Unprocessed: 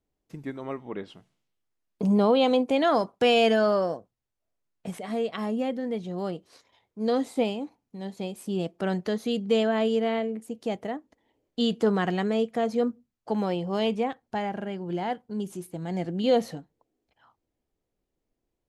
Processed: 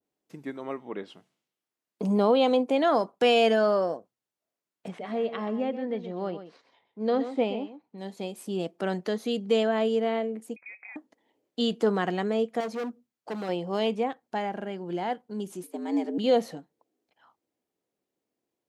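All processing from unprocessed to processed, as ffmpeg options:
ffmpeg -i in.wav -filter_complex "[0:a]asettb=1/sr,asplit=3[link_01][link_02][link_03];[link_01]atrim=end=4.884[link_04];[link_02]atrim=start=4.88:end=7.98,asetpts=PTS-STARTPTS,afade=type=in:duration=0.004:curve=qsin,afade=type=out:start_time=3.096:duration=0.004:curve=qsin,lowpass=3300,aecho=1:1:126:0.266,atrim=end_sample=136710[link_05];[link_03]atrim=start=7.976[link_06];[link_04][link_05]acrossfade=duration=0.004:curve1=hsin:curve2=qsin[link_07];[link_07][link_06]acrossfade=duration=0.004:curve1=qsin:curve2=hsin,asettb=1/sr,asplit=3[link_08][link_09][link_10];[link_08]atrim=end=10.564[link_11];[link_09]atrim=start=10.56:end=10.96,asetpts=PTS-STARTPTS,afade=type=in:duration=0.004:curve=qsin,afade=type=out:start_time=0.396:duration=0.004:curve=qsin,acompressor=threshold=-44dB:ratio=4:attack=3.2:release=140:knee=1:detection=peak,lowpass=frequency=2300:width_type=q:width=0.5098,lowpass=frequency=2300:width_type=q:width=0.6013,lowpass=frequency=2300:width_type=q:width=0.9,lowpass=frequency=2300:width_type=q:width=2.563,afreqshift=-2700[link_12];[link_10]atrim=start=10.956[link_13];[link_11][link_12]acrossfade=duration=0.004:curve1=hsin:curve2=qsin[link_14];[link_14][link_13]acrossfade=duration=0.004:curve1=qsin:curve2=hsin,asettb=1/sr,asplit=3[link_15][link_16][link_17];[link_15]atrim=end=12.604[link_18];[link_16]atrim=start=12.6:end=13.49,asetpts=PTS-STARTPTS,afade=type=in:duration=0.004:curve=qsin,afade=type=out:start_time=0.886:duration=0.004:curve=qsin,equalizer=frequency=190:width=2:gain=-3,asoftclip=type=hard:threshold=-29dB[link_19];[link_17]atrim=start=13.486[link_20];[link_18][link_19]acrossfade=duration=0.004:curve1=hsin:curve2=qsin[link_21];[link_21][link_20]acrossfade=duration=0.004:curve1=qsin:curve2=hsin,asettb=1/sr,asplit=3[link_22][link_23][link_24];[link_22]atrim=end=15.634[link_25];[link_23]atrim=start=15.63:end=16.18,asetpts=PTS-STARTPTS,afade=type=in:duration=0.004:curve=qsin,afade=type=out:start_time=0.546:duration=0.004:curve=qsin,equalizer=frequency=200:width_type=o:width=0.2:gain=11.5,acrossover=split=250|3000[link_26][link_27][link_28];[link_27]acompressor=threshold=-29dB:ratio=6:attack=3.2:release=140:knee=2.83:detection=peak[link_29];[link_26][link_29][link_28]amix=inputs=3:normalize=0,afreqshift=94[link_30];[link_24]atrim=start=16.176[link_31];[link_25][link_30]acrossfade=duration=0.004:curve1=hsin:curve2=qsin[link_32];[link_32][link_31]acrossfade=duration=0.004:curve1=qsin:curve2=hsin,highpass=210,adynamicequalizer=threshold=0.0141:dfrequency=1500:dqfactor=0.7:tfrequency=1500:tqfactor=0.7:attack=5:release=100:ratio=0.375:range=2:mode=cutabove:tftype=highshelf" out.wav

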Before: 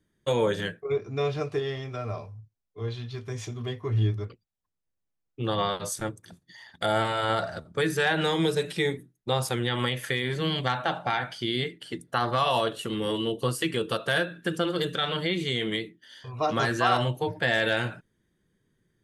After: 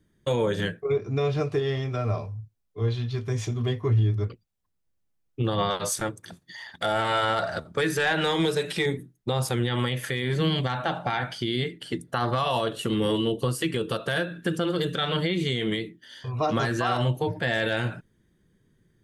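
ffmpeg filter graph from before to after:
ffmpeg -i in.wav -filter_complex "[0:a]asettb=1/sr,asplit=3[link_01][link_02][link_03];[link_01]atrim=end=5.704[link_04];[link_02]atrim=start=5.7:end=8.86,asetpts=PTS-STARTPTS,afade=type=in:duration=0.004:curve=qsin,afade=type=out:start_time=3.156:duration=0.004:curve=qsin,highshelf=frequency=10000:gain=7,asplit=2[link_05][link_06];[link_06]highpass=frequency=720:poles=1,volume=9dB,asoftclip=type=tanh:threshold=-12.5dB[link_07];[link_05][link_07]amix=inputs=2:normalize=0,lowpass=frequency=4500:poles=1,volume=-6dB[link_08];[link_03]atrim=start=8.856[link_09];[link_04][link_08]acrossfade=duration=0.004:curve1=hsin:curve2=qsin[link_10];[link_10][link_09]acrossfade=duration=0.004:curve1=qsin:curve2=hsin,lowshelf=frequency=320:gain=5.5,alimiter=limit=-18.5dB:level=0:latency=1:release=178,volume=3dB" out.wav

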